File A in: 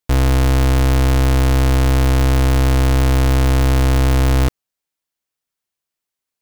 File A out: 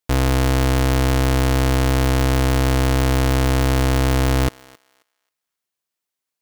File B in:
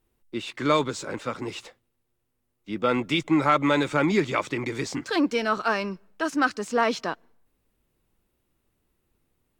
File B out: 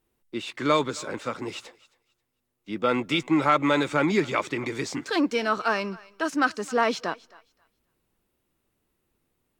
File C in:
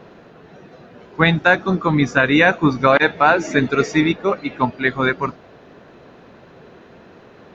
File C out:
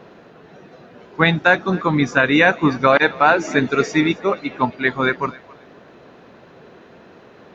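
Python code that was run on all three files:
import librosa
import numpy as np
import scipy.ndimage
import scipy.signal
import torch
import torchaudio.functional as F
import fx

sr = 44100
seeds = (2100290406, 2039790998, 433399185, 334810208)

p1 = fx.low_shelf(x, sr, hz=95.0, db=-7.5)
y = p1 + fx.echo_thinned(p1, sr, ms=268, feedback_pct=22, hz=720.0, wet_db=-20.5, dry=0)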